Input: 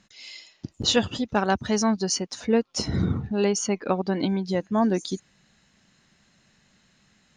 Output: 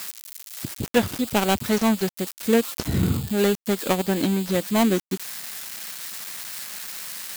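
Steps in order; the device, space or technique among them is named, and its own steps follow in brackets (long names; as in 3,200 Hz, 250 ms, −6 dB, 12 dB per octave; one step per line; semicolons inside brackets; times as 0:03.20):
budget class-D amplifier (gap after every zero crossing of 0.26 ms; spike at every zero crossing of −18 dBFS)
level +2.5 dB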